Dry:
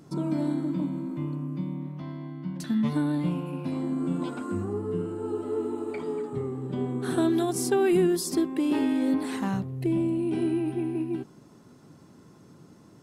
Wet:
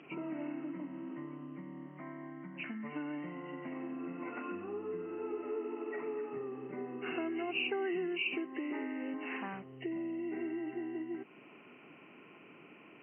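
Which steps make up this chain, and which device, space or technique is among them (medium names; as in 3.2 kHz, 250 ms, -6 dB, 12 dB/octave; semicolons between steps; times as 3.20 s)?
hearing aid with frequency lowering (knee-point frequency compression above 1.8 kHz 4:1; compression 2.5:1, threshold -38 dBFS, peak gain reduction 12.5 dB; cabinet simulation 400–5600 Hz, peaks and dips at 540 Hz -4 dB, 910 Hz -4 dB, 4.1 kHz -9 dB); trim +3 dB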